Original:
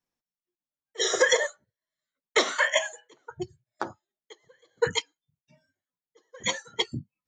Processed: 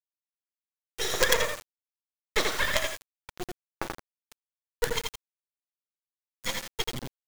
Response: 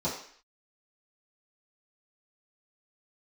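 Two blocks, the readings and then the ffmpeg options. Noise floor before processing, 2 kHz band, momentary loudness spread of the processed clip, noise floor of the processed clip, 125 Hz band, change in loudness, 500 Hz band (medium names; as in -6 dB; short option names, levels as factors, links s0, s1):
under -85 dBFS, -3.0 dB, 18 LU, under -85 dBFS, 0.0 dB, -3.0 dB, -4.5 dB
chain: -filter_complex "[0:a]acrossover=split=7000[s0][s1];[s1]acompressor=threshold=0.00398:ratio=4:attack=1:release=60[s2];[s0][s2]amix=inputs=2:normalize=0,aecho=1:1:84|168|252|336:0.631|0.17|0.046|0.0124,acrusher=bits=3:dc=4:mix=0:aa=0.000001"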